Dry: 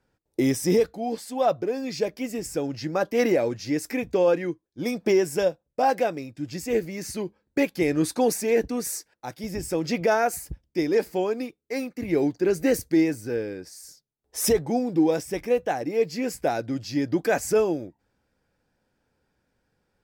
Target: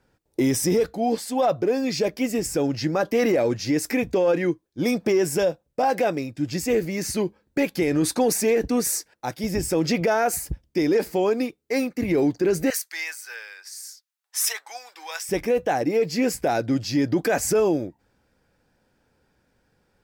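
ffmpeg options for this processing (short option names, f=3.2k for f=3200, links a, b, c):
-filter_complex "[0:a]asettb=1/sr,asplit=3[a][b][c];[a]atrim=end=12.704[d];[b]atrim=start=12.7:end=15.29,asetpts=PTS-STARTPTS,afade=t=in:d=0.004:c=qsin,afade=t=out:st=2.586:d=0.004:c=qsin,highpass=f=1.1k:w=0.5412,highpass=f=1.1k:w=1.3066[e];[c]atrim=start=15.286[f];[d][e]acrossfade=d=0.004:c1=hsin:c2=qsin[g];[g][f]acrossfade=d=0.004:c1=qsin:c2=hsin,acontrast=58,alimiter=limit=-13.5dB:level=0:latency=1:release=32"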